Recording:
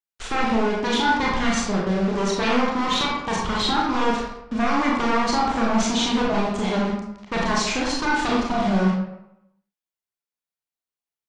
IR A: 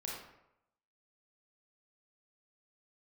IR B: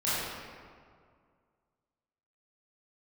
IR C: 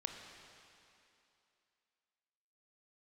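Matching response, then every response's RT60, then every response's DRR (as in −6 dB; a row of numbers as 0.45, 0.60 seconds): A; 0.85, 2.1, 2.7 seconds; −4.0, −12.5, 3.5 decibels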